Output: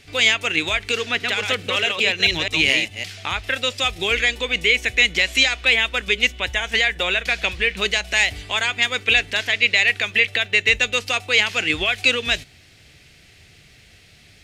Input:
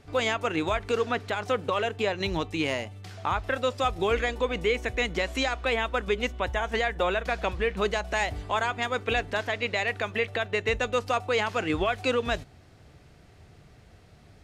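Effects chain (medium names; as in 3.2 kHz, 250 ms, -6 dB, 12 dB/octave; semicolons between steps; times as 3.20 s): 0.99–3.04 s: chunks repeated in reverse 213 ms, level -3.5 dB; resonant high shelf 1.6 kHz +12.5 dB, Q 1.5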